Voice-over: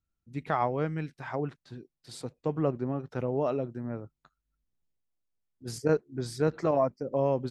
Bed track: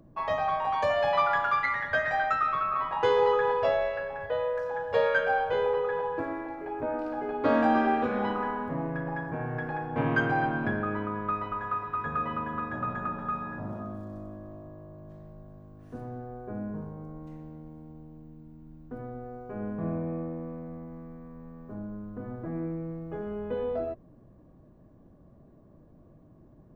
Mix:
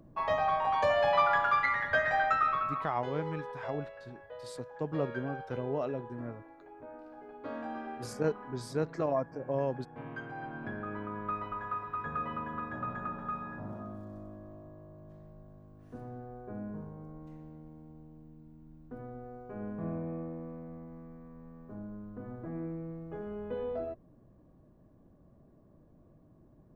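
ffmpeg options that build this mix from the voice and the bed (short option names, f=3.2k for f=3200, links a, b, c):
-filter_complex "[0:a]adelay=2350,volume=-5dB[a];[1:a]volume=10.5dB,afade=t=out:st=2.47:d=0.5:silence=0.16788,afade=t=in:st=10.33:d=0.99:silence=0.266073[b];[a][b]amix=inputs=2:normalize=0"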